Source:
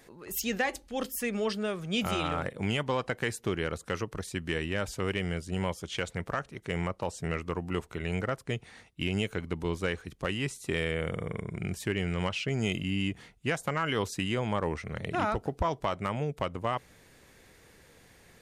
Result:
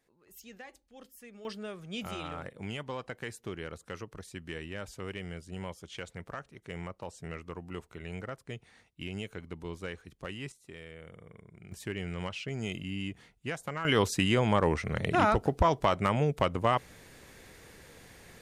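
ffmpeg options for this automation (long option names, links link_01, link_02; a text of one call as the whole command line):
ffmpeg -i in.wav -af "asetnsamples=nb_out_samples=441:pad=0,asendcmd='1.45 volume volume -8.5dB;10.52 volume volume -17dB;11.72 volume volume -6dB;13.85 volume volume 4.5dB',volume=-19dB" out.wav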